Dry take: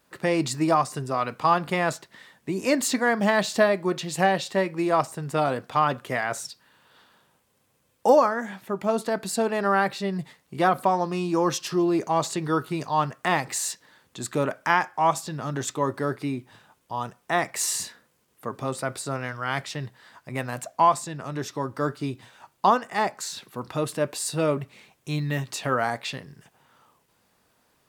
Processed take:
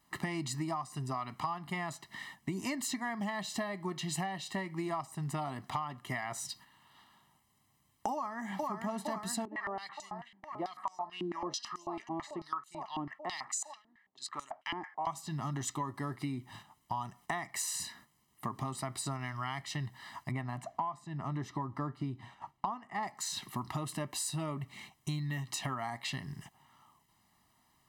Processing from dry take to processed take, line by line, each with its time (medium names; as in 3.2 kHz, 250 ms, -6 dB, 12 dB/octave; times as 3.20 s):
8.13–8.71 s: echo throw 460 ms, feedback 85%, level -7.5 dB
9.45–15.07 s: step-sequenced band-pass 9.1 Hz 320–7000 Hz
20.31–23.03 s: low-pass 1.5 kHz 6 dB/octave
whole clip: gate -53 dBFS, range -7 dB; comb 1 ms, depth 95%; compression 16:1, threshold -33 dBFS